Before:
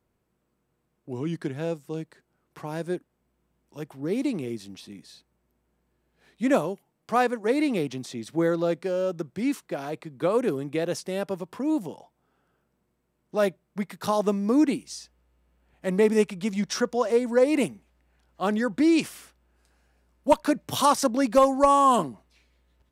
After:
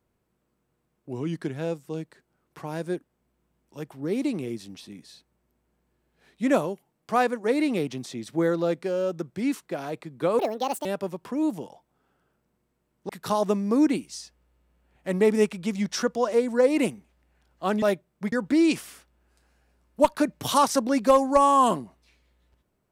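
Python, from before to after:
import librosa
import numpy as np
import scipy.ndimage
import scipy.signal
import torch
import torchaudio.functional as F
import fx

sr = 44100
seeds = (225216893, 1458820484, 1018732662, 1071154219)

y = fx.edit(x, sr, fx.speed_span(start_s=10.39, length_s=0.74, speed=1.6),
    fx.move(start_s=13.37, length_s=0.5, to_s=18.6), tone=tone)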